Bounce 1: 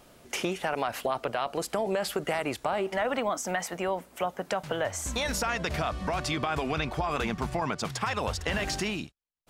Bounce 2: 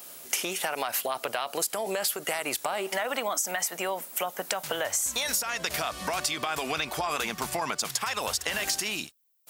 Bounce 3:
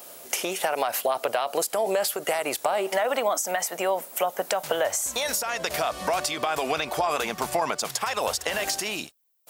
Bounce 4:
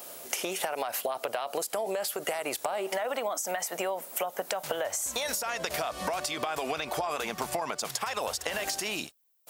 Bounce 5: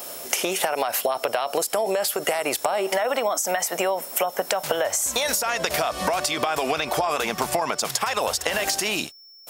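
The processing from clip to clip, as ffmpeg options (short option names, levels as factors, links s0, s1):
-af "aemphasis=mode=production:type=riaa,acompressor=threshold=0.0355:ratio=6,volume=1.5"
-af "equalizer=f=590:t=o:w=1.5:g=8"
-af "acompressor=threshold=0.0398:ratio=6"
-af "aeval=exprs='val(0)+0.002*sin(2*PI*5400*n/s)':c=same,volume=2.51"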